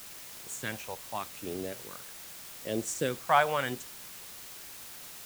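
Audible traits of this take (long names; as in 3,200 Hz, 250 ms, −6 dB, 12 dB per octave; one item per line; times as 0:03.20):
phaser sweep stages 2, 0.8 Hz, lowest notch 300–1,300 Hz
a quantiser's noise floor 8 bits, dither triangular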